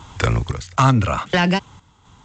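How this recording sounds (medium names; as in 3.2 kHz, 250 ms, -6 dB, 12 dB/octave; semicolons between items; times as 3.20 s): random-step tremolo 3.9 Hz, depth 80%; G.722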